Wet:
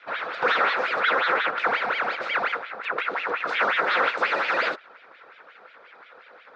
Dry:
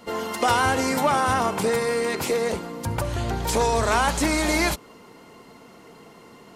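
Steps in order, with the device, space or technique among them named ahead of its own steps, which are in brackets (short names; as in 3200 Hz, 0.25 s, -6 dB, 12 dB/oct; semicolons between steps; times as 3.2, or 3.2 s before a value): voice changer toy (ring modulator with a swept carrier 1500 Hz, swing 85%, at 5.6 Hz; speaker cabinet 440–3600 Hz, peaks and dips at 500 Hz +8 dB, 1400 Hz +9 dB, 3000 Hz -8 dB)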